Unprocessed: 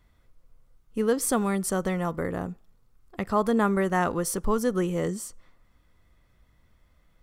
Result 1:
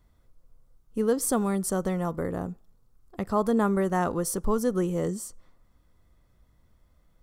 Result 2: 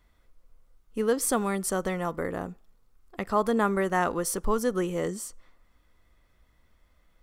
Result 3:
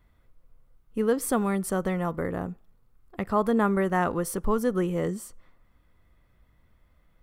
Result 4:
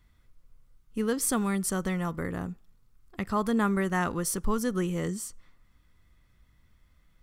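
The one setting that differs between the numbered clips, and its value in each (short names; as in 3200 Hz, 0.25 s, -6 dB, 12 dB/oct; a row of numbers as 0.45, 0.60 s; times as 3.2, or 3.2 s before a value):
bell, frequency: 2300, 120, 6100, 590 Hz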